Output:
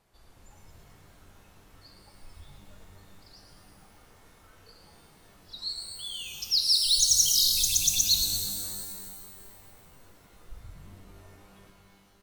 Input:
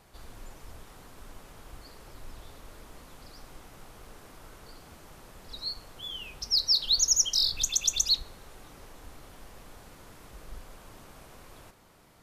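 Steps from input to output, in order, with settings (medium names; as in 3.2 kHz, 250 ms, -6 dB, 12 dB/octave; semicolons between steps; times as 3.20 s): spectral noise reduction 11 dB; frequency-shifting echo 113 ms, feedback 51%, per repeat +62 Hz, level -8 dB; pitch-shifted reverb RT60 2.1 s, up +12 st, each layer -2 dB, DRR 5 dB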